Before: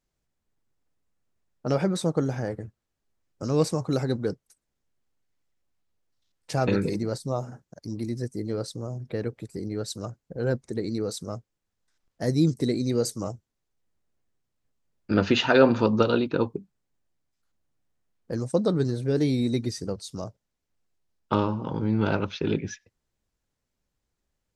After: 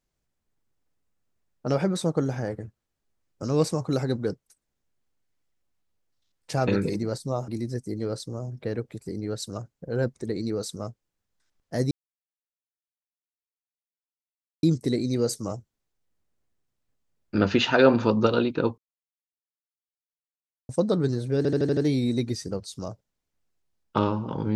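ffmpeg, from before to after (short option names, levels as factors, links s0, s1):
-filter_complex "[0:a]asplit=10[s0][s1][s2][s3][s4][s5][s6][s7][s8][s9];[s0]atrim=end=7.482[s10];[s1]atrim=start=7.958:end=12.39,asetpts=PTS-STARTPTS,afade=t=out:st=4.428:d=0.004:c=hsin,apad=pad_dur=2.72[s11];[s2]atrim=start=12.39:end=16.54,asetpts=PTS-STARTPTS,afade=t=in:d=0.004:c=hsin,afade=t=out:st=4.146:d=0.004:c=hsin[s12];[s3]atrim=start=16.54:end=18.45,asetpts=PTS-STARTPTS,volume=0[s13];[s4]atrim=start=18.45:end=19.212,asetpts=PTS-STARTPTS,afade=t=in:d=0.004:c=hsin[s14];[s5]atrim=start=19.128:end=19.212[s15];[s6]atrim=start=19.128:end=19.212[s16];[s7]atrim=start=19.128:end=19.212[s17];[s8]atrim=start=19.128:end=19.212[s18];[s9]atrim=start=19.128[s19];[s11][s12][s13][s14]concat=n=4:v=0:a=1[s20];[s10][s20]acrossfade=d=0.004:c1=hsin:c2=hsin[s21];[s21][s15]acrossfade=d=0.004:c1=hsin:c2=hsin[s22];[s22][s16]acrossfade=d=0.004:c1=hsin:c2=hsin[s23];[s23][s17]acrossfade=d=0.004:c1=hsin:c2=hsin[s24];[s24][s18]acrossfade=d=0.004:c1=hsin:c2=hsin[s25];[s25][s19]acrossfade=d=0.004:c1=hsin:c2=hsin"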